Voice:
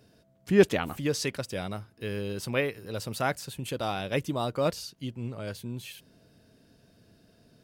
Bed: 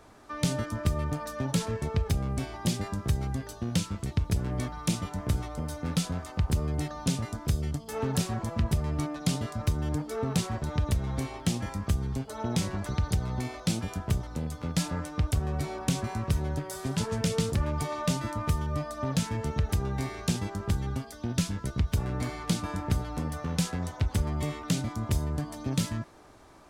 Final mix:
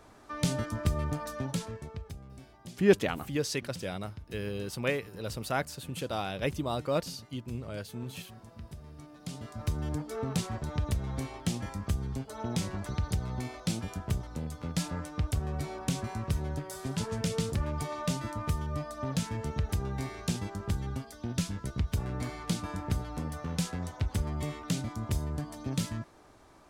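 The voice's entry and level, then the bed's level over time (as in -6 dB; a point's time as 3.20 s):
2.30 s, -2.5 dB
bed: 1.32 s -1.5 dB
2.26 s -18.5 dB
9.03 s -18.5 dB
9.73 s -3.5 dB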